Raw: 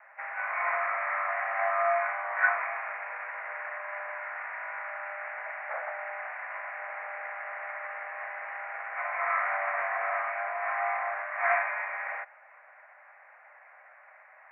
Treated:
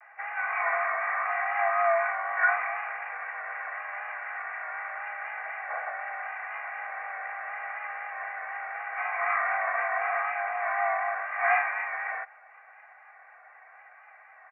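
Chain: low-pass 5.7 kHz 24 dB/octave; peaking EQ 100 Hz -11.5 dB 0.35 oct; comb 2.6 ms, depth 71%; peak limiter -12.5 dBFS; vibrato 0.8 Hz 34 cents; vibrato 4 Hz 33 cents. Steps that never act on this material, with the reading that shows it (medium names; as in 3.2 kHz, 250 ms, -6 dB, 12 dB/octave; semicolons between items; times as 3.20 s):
low-pass 5.7 kHz: input has nothing above 2.7 kHz; peaking EQ 100 Hz: input has nothing below 480 Hz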